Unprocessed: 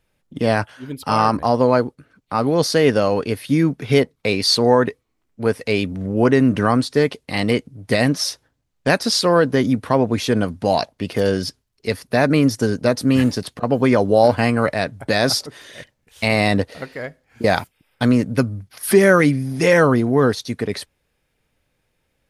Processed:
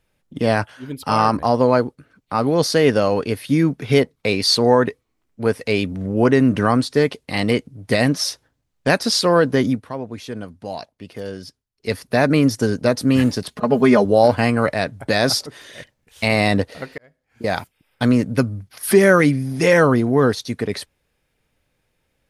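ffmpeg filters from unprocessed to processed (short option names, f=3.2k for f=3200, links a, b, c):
-filter_complex "[0:a]asettb=1/sr,asplit=3[a][b][c];[a]atrim=end=13.484[d];[b]atrim=start=13.48:end=14.05,asetpts=PTS-STARTPTS,afade=t=in:d=0.004:c=qsin,afade=t=out:st=0.566:d=0.004:c=qsin,aecho=1:1:4.8:0.77,atrim=end_sample=25137[e];[c]atrim=start=14.046[f];[d][e]acrossfade=d=0.004:c1=hsin:c2=qsin[g];[g][f]acrossfade=d=0.004:c1=qsin:c2=hsin,asplit=4[h][i][j][k];[h]atrim=end=9.84,asetpts=PTS-STARTPTS,afade=t=out:st=9.68:d=0.16:silence=0.251189[l];[i]atrim=start=9.84:end=11.76,asetpts=PTS-STARTPTS,volume=-12dB[m];[j]atrim=start=11.76:end=16.98,asetpts=PTS-STARTPTS,afade=t=in:d=0.16:silence=0.251189,afade=t=out:st=5.216:d=0.004:c=hsin[n];[k]atrim=start=16.98,asetpts=PTS-STARTPTS,afade=t=in:d=1.34:c=qsin[o];[l][m][n][o]concat=n=4:v=0:a=1"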